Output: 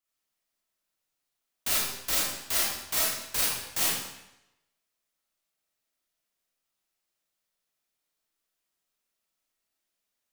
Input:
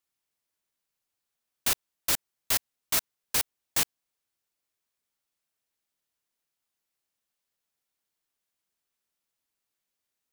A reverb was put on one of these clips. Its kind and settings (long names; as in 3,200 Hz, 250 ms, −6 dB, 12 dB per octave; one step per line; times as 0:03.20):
comb and all-pass reverb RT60 0.9 s, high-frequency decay 0.95×, pre-delay 5 ms, DRR −7 dB
level −5.5 dB